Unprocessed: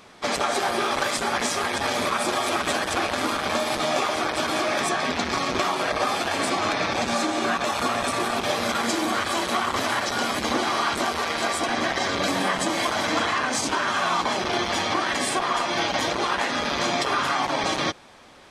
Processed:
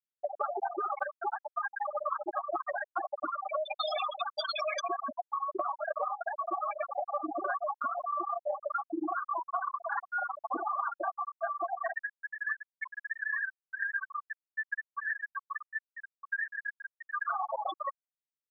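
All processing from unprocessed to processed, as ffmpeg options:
ffmpeg -i in.wav -filter_complex "[0:a]asettb=1/sr,asplit=3[link_01][link_02][link_03];[link_01]atrim=end=3.614[link_04];[link_02]atrim=start=3.61:end=4.81,asetpts=PTS-STARTPTS,afade=type=in:duration=0.004:curve=qsin,afade=type=out:start_time=1.196:duration=0.004:curve=qsin,lowpass=frequency=7500:width=0.5412,lowpass=frequency=7500:width=1.3066,aemphasis=mode=production:type=riaa[link_05];[link_03]atrim=start=4.806[link_06];[link_04][link_05]acrossfade=duration=0.004:curve1=hsin:curve2=qsin[link_07];[link_07][link_06]acrossfade=duration=0.004:curve1=qsin:curve2=hsin,asettb=1/sr,asplit=3[link_08][link_09][link_10];[link_08]atrim=end=11.954[link_11];[link_09]atrim=start=11.95:end=17.26,asetpts=PTS-STARTPTS,afade=type=in:duration=0.004:curve=qsin,afade=type=out:start_time=5.306:duration=0.004:curve=qsin,bandpass=frequency=1800:width_type=q:width=4.3,aecho=1:1:1.8:0.85,atrim=end_sample=234171[link_12];[link_10]atrim=start=17.256[link_13];[link_11][link_12]acrossfade=duration=0.004:curve1=hsin:curve2=qsin[link_14];[link_14][link_13]acrossfade=duration=0.004:curve1=qsin:curve2=hsin,highpass=frequency=540:poles=1,afftfilt=real='re*gte(hypot(re,im),0.224)':imag='im*gte(hypot(re,im),0.224)':win_size=1024:overlap=0.75,acompressor=threshold=-35dB:ratio=6,volume=5dB" out.wav

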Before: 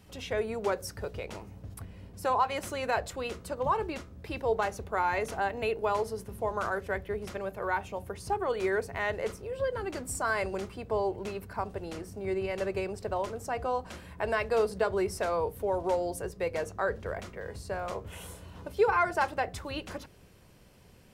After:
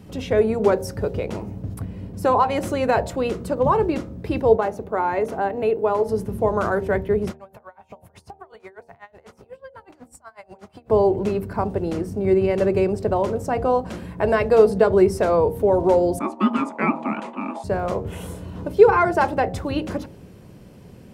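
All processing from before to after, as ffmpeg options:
ffmpeg -i in.wav -filter_complex "[0:a]asettb=1/sr,asplit=3[link_01][link_02][link_03];[link_01]atrim=end=4.564[link_04];[link_02]atrim=start=4.56:end=6.09,asetpts=PTS-STARTPTS,afade=type=in:duration=0.004:curve=qsin,afade=type=out:start_time=1.526:duration=0.004:curve=qsin,lowpass=frequency=1000:poles=1,aemphasis=mode=production:type=bsi[link_05];[link_03]atrim=start=6.086[link_06];[link_04][link_05]acrossfade=duration=0.004:curve1=hsin:curve2=qsin[link_07];[link_07][link_06]acrossfade=duration=0.004:curve1=qsin:curve2=hsin,asettb=1/sr,asplit=3[link_08][link_09][link_10];[link_08]atrim=end=7.314[link_11];[link_09]atrim=start=7.31:end=10.9,asetpts=PTS-STARTPTS,afade=type=in:duration=0.004:curve=qsin,afade=type=out:start_time=3.586:duration=0.004:curve=qsin,lowshelf=frequency=550:width_type=q:width=1.5:gain=-11,acompressor=threshold=-45dB:ratio=4:attack=3.2:release=140:knee=1:detection=peak,aeval=exprs='val(0)*pow(10,-28*(0.5-0.5*cos(2*PI*8.1*n/s))/20)':channel_layout=same[link_12];[link_10]atrim=start=10.896[link_13];[link_11][link_12]acrossfade=duration=0.004:curve1=hsin:curve2=qsin[link_14];[link_14][link_13]acrossfade=duration=0.004:curve1=qsin:curve2=hsin,asettb=1/sr,asplit=3[link_15][link_16][link_17];[link_15]atrim=end=16.194[link_18];[link_16]atrim=start=16.19:end=17.64,asetpts=PTS-STARTPTS,afade=type=in:duration=0.004:curve=qsin,afade=type=out:start_time=1.446:duration=0.004:curve=qsin,agate=range=-33dB:threshold=-44dB:ratio=3:release=100:detection=peak,aeval=exprs='val(0)*sin(2*PI*740*n/s)':channel_layout=same,highpass=frequency=220:width=0.5412,highpass=frequency=220:width=1.3066,equalizer=frequency=220:width_type=q:width=4:gain=7,equalizer=frequency=1000:width_type=q:width=4:gain=9,equalizer=frequency=2400:width_type=q:width=4:gain=8,equalizer=frequency=5500:width_type=q:width=4:gain=-6,lowpass=frequency=9900:width=0.5412,lowpass=frequency=9900:width=1.3066[link_19];[link_17]atrim=start=17.636[link_20];[link_18][link_19]acrossfade=duration=0.004:curve1=hsin:curve2=qsin[link_21];[link_21][link_20]acrossfade=duration=0.004:curve1=qsin:curve2=hsin,equalizer=frequency=210:width=0.33:gain=13.5,bandreject=frequency=77.55:width_type=h:width=4,bandreject=frequency=155.1:width_type=h:width=4,bandreject=frequency=232.65:width_type=h:width=4,bandreject=frequency=310.2:width_type=h:width=4,bandreject=frequency=387.75:width_type=h:width=4,bandreject=frequency=465.3:width_type=h:width=4,bandreject=frequency=542.85:width_type=h:width=4,bandreject=frequency=620.4:width_type=h:width=4,bandreject=frequency=697.95:width_type=h:width=4,bandreject=frequency=775.5:width_type=h:width=4,bandreject=frequency=853.05:width_type=h:width=4,bandreject=frequency=930.6:width_type=h:width=4,volume=3.5dB" out.wav

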